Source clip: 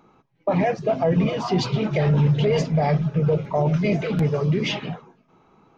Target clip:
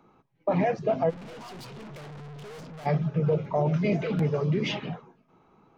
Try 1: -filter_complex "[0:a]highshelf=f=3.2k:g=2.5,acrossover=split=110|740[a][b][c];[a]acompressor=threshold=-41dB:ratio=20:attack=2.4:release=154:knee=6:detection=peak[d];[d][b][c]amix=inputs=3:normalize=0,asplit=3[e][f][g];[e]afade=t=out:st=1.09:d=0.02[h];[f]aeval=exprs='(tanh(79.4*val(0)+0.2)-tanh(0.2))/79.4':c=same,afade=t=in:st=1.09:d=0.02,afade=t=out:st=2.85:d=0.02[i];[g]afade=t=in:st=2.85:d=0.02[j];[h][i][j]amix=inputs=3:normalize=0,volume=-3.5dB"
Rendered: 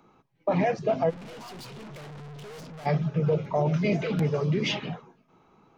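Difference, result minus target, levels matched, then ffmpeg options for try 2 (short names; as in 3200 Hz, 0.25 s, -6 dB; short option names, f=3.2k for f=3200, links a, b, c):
8000 Hz band +4.5 dB
-filter_complex "[0:a]highshelf=f=3.2k:g=-4.5,acrossover=split=110|740[a][b][c];[a]acompressor=threshold=-41dB:ratio=20:attack=2.4:release=154:knee=6:detection=peak[d];[d][b][c]amix=inputs=3:normalize=0,asplit=3[e][f][g];[e]afade=t=out:st=1.09:d=0.02[h];[f]aeval=exprs='(tanh(79.4*val(0)+0.2)-tanh(0.2))/79.4':c=same,afade=t=in:st=1.09:d=0.02,afade=t=out:st=2.85:d=0.02[i];[g]afade=t=in:st=2.85:d=0.02[j];[h][i][j]amix=inputs=3:normalize=0,volume=-3.5dB"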